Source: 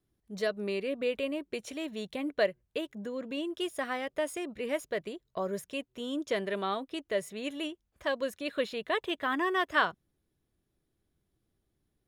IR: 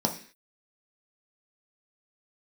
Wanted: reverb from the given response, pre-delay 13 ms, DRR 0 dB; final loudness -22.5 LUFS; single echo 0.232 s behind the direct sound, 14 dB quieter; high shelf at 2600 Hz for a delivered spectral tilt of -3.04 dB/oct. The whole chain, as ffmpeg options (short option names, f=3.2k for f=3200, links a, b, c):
-filter_complex "[0:a]highshelf=f=2.6k:g=4,aecho=1:1:232:0.2,asplit=2[a][b];[1:a]atrim=start_sample=2205,adelay=13[c];[b][c]afir=irnorm=-1:irlink=0,volume=-9.5dB[d];[a][d]amix=inputs=2:normalize=0,volume=5.5dB"